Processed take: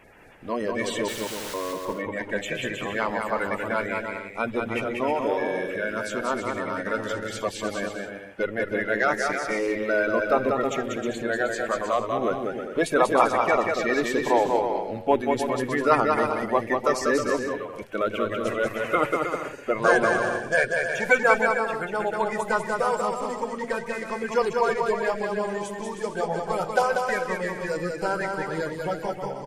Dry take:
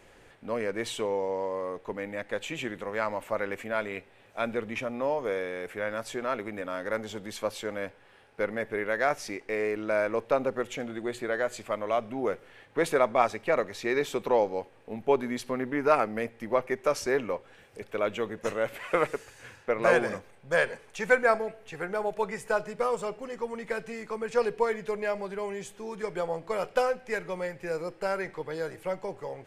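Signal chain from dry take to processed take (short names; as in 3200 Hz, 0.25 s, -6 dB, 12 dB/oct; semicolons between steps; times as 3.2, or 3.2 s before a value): bin magnitudes rounded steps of 30 dB; 1.08–1.54 wrapped overs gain 37 dB; bouncing-ball echo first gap 0.19 s, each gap 0.65×, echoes 5; gain +3.5 dB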